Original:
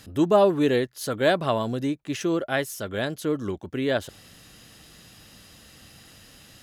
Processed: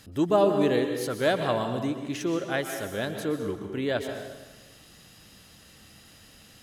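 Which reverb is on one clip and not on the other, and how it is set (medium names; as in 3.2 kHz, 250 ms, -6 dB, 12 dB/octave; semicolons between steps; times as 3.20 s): plate-style reverb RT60 1.2 s, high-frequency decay 0.8×, pre-delay 110 ms, DRR 5.5 dB; trim -3.5 dB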